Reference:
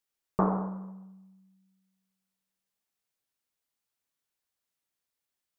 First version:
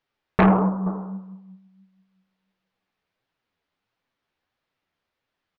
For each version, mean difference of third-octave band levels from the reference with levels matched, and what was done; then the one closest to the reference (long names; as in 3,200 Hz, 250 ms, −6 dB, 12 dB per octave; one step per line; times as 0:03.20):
4.0 dB: high-frequency loss of the air 290 metres
on a send: single-tap delay 474 ms −20.5 dB
on the sum: flanger 1.5 Hz, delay 5.6 ms, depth 8.8 ms, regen +35%
sine wavefolder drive 8 dB, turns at −17 dBFS
level +6 dB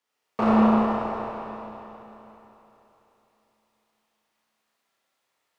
13.0 dB: notch filter 1,500 Hz, Q 16
frequency shifter +29 Hz
mid-hump overdrive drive 20 dB, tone 1,200 Hz, clips at −18 dBFS
four-comb reverb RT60 3.5 s, combs from 25 ms, DRR −7 dB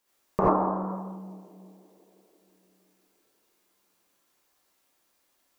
6.5 dB: graphic EQ with 10 bands 125 Hz −6 dB, 250 Hz +5 dB, 500 Hz +5 dB, 1,000 Hz +5 dB
downward compressor 2.5 to 1, threshold −38 dBFS, peak gain reduction 14 dB
on a send: tape delay 169 ms, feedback 90%, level −19 dB, low-pass 1,000 Hz
on the sum: reverb whose tail is shaped and stops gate 110 ms rising, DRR −6 dB
level +7.5 dB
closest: first